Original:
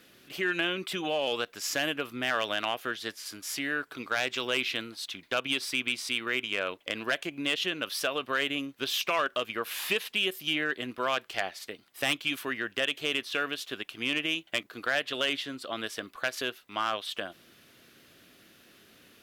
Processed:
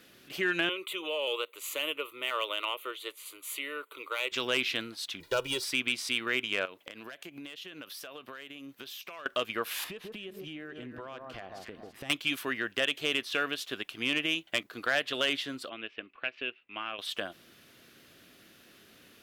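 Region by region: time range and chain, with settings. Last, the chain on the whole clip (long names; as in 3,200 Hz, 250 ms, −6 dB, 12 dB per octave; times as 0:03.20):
0:00.69–0:04.32: high-pass filter 360 Hz + parametric band 16,000 Hz +3.5 dB 1.1 octaves + phaser with its sweep stopped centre 1,100 Hz, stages 8
0:05.20–0:05.64: mu-law and A-law mismatch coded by mu + parametric band 2,200 Hz −9.5 dB 1.5 octaves + comb filter 2.1 ms, depth 81%
0:06.65–0:09.26: high-pass filter 93 Hz + parametric band 14,000 Hz +8 dB 0.38 octaves + downward compressor 12 to 1, threshold −40 dBFS
0:09.84–0:12.10: spectral tilt −3 dB per octave + delay that swaps between a low-pass and a high-pass 140 ms, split 1,300 Hz, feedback 52%, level −9 dB + downward compressor 8 to 1, threshold −39 dBFS
0:15.69–0:16.99: parametric band 320 Hz +6 dB 1.4 octaves + transient designer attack +2 dB, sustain −3 dB + transistor ladder low-pass 2,800 Hz, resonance 75%
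whole clip: no processing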